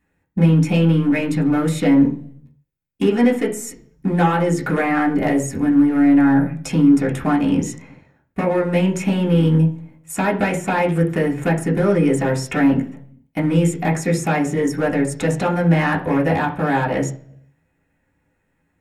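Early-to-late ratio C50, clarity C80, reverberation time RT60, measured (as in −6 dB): 12.0 dB, 17.0 dB, 0.50 s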